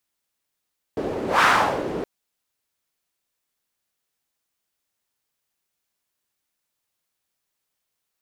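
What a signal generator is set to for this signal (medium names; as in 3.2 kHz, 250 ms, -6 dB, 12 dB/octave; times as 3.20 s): whoosh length 1.07 s, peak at 0.46 s, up 0.18 s, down 0.48 s, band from 390 Hz, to 1.4 kHz, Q 2, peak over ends 11.5 dB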